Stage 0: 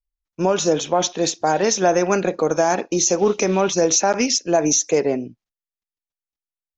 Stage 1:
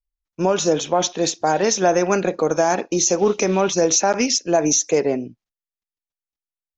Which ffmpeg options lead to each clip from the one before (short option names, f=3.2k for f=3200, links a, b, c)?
-af anull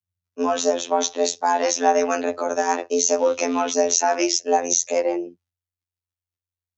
-af "afftfilt=real='hypot(re,im)*cos(PI*b)':imag='0':win_size=2048:overlap=0.75,afreqshift=89,volume=1dB"